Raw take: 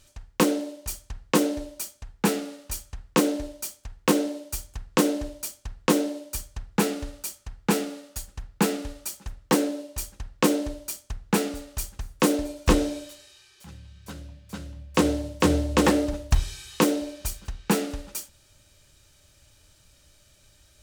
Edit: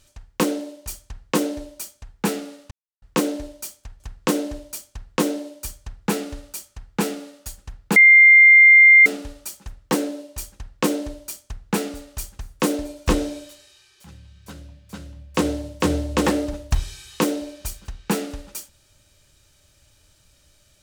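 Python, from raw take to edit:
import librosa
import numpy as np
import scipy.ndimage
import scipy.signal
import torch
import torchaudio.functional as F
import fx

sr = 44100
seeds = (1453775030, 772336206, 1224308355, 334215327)

y = fx.edit(x, sr, fx.silence(start_s=2.71, length_s=0.31),
    fx.cut(start_s=4.0, length_s=0.7),
    fx.insert_tone(at_s=8.66, length_s=1.1, hz=2100.0, db=-6.5), tone=tone)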